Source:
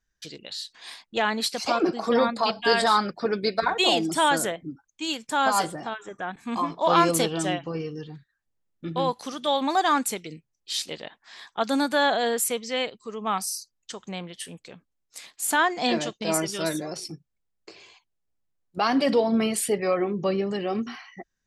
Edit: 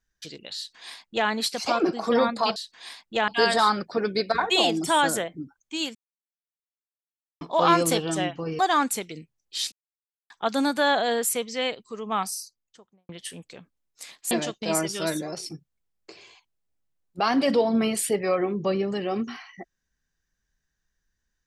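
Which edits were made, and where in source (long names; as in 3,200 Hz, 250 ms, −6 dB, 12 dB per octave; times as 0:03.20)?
0:00.57–0:01.29: duplicate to 0:02.56
0:05.23–0:06.69: silence
0:07.87–0:09.74: remove
0:10.87–0:11.45: silence
0:13.33–0:14.24: fade out and dull
0:15.46–0:15.90: remove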